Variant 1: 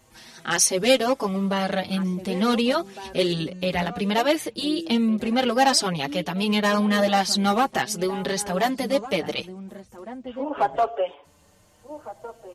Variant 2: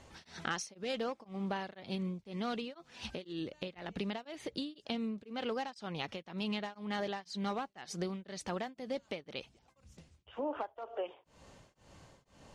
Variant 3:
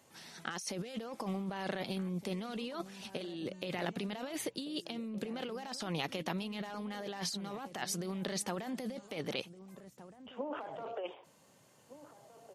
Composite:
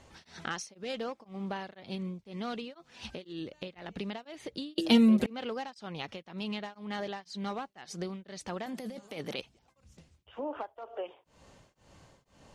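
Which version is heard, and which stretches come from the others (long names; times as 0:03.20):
2
0:04.78–0:05.26: punch in from 1
0:08.66–0:09.41: punch in from 3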